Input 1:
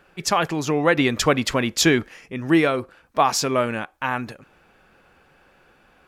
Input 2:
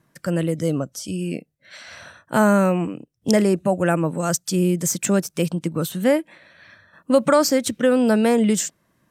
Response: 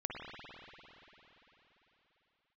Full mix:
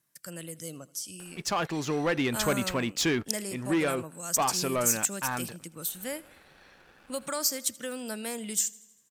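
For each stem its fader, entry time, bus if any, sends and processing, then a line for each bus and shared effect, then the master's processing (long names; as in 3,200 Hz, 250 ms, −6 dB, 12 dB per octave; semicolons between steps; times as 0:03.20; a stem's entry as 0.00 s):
−14.0 dB, 1.20 s, no send, no echo send, upward compression, threshold −35 dBFS; leveller curve on the samples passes 2
−1.5 dB, 0.00 s, no send, echo send −22 dB, first-order pre-emphasis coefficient 0.9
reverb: not used
echo: repeating echo 80 ms, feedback 58%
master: no processing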